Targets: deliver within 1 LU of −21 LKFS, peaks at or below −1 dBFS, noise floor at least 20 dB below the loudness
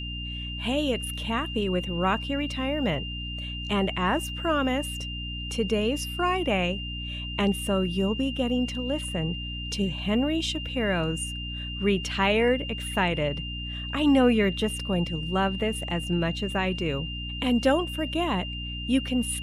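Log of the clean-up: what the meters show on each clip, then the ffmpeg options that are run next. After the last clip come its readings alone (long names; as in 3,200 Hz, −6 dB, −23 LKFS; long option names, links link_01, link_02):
mains hum 60 Hz; hum harmonics up to 300 Hz; level of the hum −33 dBFS; interfering tone 2,800 Hz; level of the tone −35 dBFS; integrated loudness −27.0 LKFS; sample peak −9.5 dBFS; target loudness −21.0 LKFS
→ -af "bandreject=frequency=60:width_type=h:width=4,bandreject=frequency=120:width_type=h:width=4,bandreject=frequency=180:width_type=h:width=4,bandreject=frequency=240:width_type=h:width=4,bandreject=frequency=300:width_type=h:width=4"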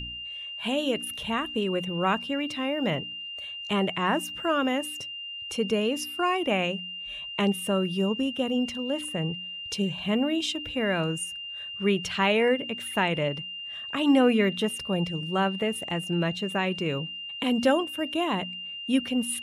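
mains hum none found; interfering tone 2,800 Hz; level of the tone −35 dBFS
→ -af "bandreject=frequency=2800:width=30"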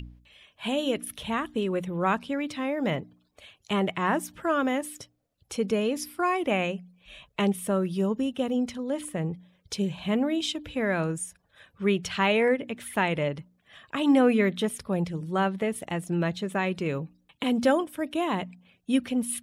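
interfering tone none found; integrated loudness −28.0 LKFS; sample peak −10.0 dBFS; target loudness −21.0 LKFS
→ -af "volume=7dB"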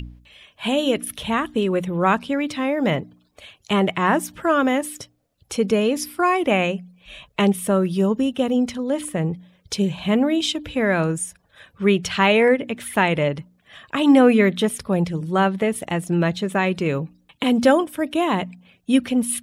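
integrated loudness −21.0 LKFS; sample peak −3.0 dBFS; background noise floor −62 dBFS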